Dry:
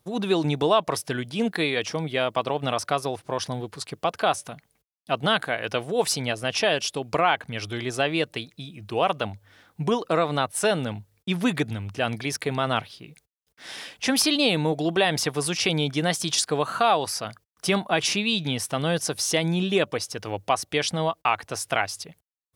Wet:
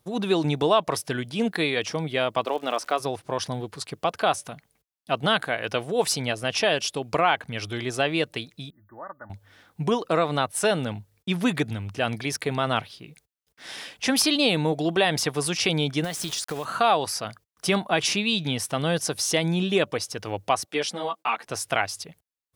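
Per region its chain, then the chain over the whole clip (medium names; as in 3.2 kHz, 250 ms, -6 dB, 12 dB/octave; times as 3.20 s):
2.44–2.99 s: high-pass 260 Hz 24 dB/octave + treble shelf 4.8 kHz -6 dB + crackle 180 per s -36 dBFS
8.70–9.30 s: brick-wall FIR band-stop 2–13 kHz + amplifier tone stack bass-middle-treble 5-5-5 + comb 3.4 ms, depth 68%
16.04–16.65 s: word length cut 6-bit, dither none + compression 5:1, threshold -26 dBFS
20.66–21.47 s: high-pass 180 Hz 24 dB/octave + three-phase chorus
whole clip: none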